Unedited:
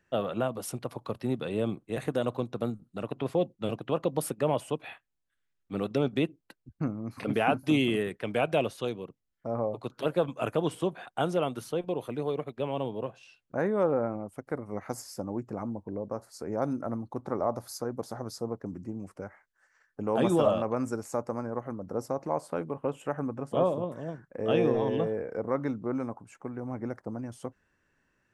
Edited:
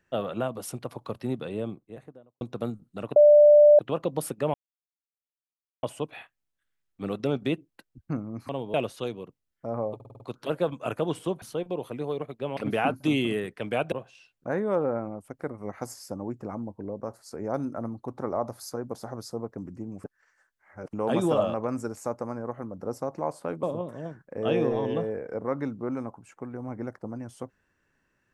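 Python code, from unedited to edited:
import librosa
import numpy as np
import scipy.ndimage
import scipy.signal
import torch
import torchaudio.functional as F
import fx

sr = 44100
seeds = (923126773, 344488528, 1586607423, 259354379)

y = fx.studio_fade_out(x, sr, start_s=1.21, length_s=1.2)
y = fx.edit(y, sr, fx.bleep(start_s=3.16, length_s=0.63, hz=592.0, db=-11.0),
    fx.insert_silence(at_s=4.54, length_s=1.29),
    fx.swap(start_s=7.2, length_s=1.35, other_s=12.75, other_length_s=0.25),
    fx.stutter(start_s=9.76, slice_s=0.05, count=6),
    fx.cut(start_s=10.98, length_s=0.62),
    fx.reverse_span(start_s=19.12, length_s=0.89),
    fx.cut(start_s=22.71, length_s=0.95), tone=tone)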